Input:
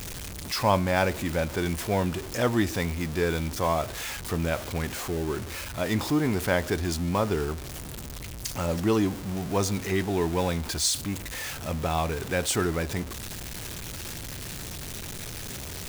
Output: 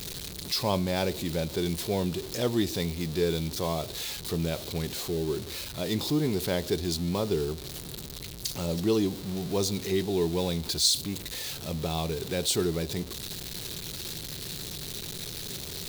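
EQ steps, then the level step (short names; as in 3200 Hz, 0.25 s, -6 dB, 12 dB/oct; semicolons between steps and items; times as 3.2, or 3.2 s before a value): high shelf 5900 Hz +5.5 dB; dynamic EQ 1500 Hz, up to -6 dB, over -42 dBFS, Q 1.2; fifteen-band EQ 160 Hz +7 dB, 400 Hz +8 dB, 4000 Hz +12 dB, 16000 Hz +3 dB; -6.5 dB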